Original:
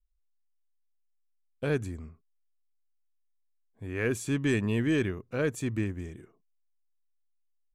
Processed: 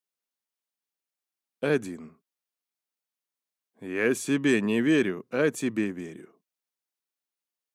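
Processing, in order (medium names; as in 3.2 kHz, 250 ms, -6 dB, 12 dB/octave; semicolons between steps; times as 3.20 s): high-pass 180 Hz 24 dB/octave; band-stop 7.4 kHz, Q 27; trim +5 dB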